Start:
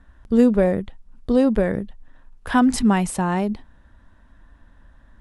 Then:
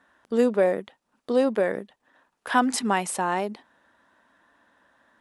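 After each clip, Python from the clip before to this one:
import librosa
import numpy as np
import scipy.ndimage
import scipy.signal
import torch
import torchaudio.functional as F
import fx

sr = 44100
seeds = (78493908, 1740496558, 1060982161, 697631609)

y = scipy.signal.sosfilt(scipy.signal.butter(2, 400.0, 'highpass', fs=sr, output='sos'), x)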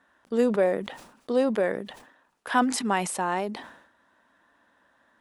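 y = fx.sustainer(x, sr, db_per_s=76.0)
y = y * librosa.db_to_amplitude(-2.0)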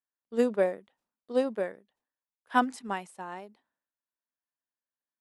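y = fx.upward_expand(x, sr, threshold_db=-44.0, expansion=2.5)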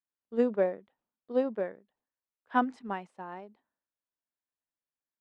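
y = fx.spacing_loss(x, sr, db_at_10k=25)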